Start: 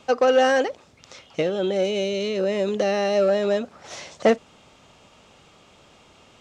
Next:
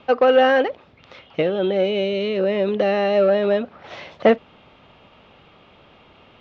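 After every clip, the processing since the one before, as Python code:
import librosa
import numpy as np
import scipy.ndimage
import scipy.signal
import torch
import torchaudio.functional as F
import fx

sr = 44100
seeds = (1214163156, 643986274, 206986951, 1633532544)

y = scipy.signal.sosfilt(scipy.signal.butter(4, 3500.0, 'lowpass', fs=sr, output='sos'), x)
y = y * librosa.db_to_amplitude(3.0)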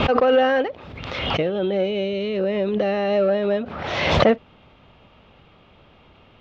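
y = fx.low_shelf(x, sr, hz=130.0, db=10.0)
y = fx.pre_swell(y, sr, db_per_s=37.0)
y = y * librosa.db_to_amplitude(-3.5)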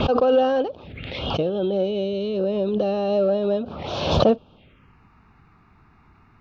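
y = fx.env_phaser(x, sr, low_hz=510.0, high_hz=2000.0, full_db=-24.0)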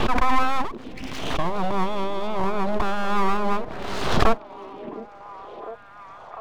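y = fx.dynamic_eq(x, sr, hz=4100.0, q=1.1, threshold_db=-47.0, ratio=4.0, max_db=-5)
y = np.abs(y)
y = fx.echo_stepped(y, sr, ms=705, hz=310.0, octaves=0.7, feedback_pct=70, wet_db=-8.5)
y = y * librosa.db_to_amplitude(2.0)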